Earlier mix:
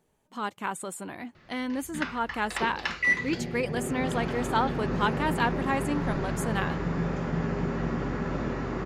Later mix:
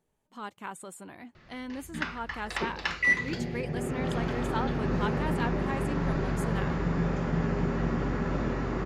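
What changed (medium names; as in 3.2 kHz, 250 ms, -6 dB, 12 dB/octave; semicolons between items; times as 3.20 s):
speech -7.5 dB; master: add bass shelf 61 Hz +6 dB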